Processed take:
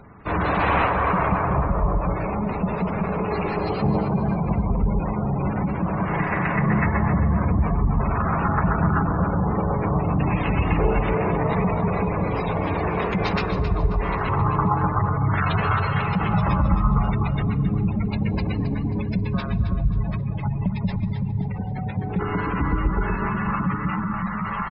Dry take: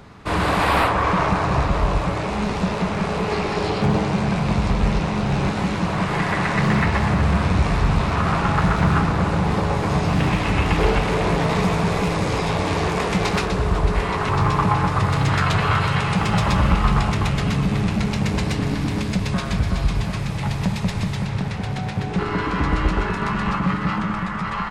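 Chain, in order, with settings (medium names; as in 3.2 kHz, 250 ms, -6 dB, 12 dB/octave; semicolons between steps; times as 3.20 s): band-stop 7.3 kHz, Q 11; spectral gate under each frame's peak -20 dB strong; 5.59–6.01 s: treble shelf 3.6 kHz -10.5 dB; feedback delay 268 ms, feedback 31%, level -10.5 dB; reverberation RT60 3.4 s, pre-delay 92 ms, DRR 19.5 dB; trim -2 dB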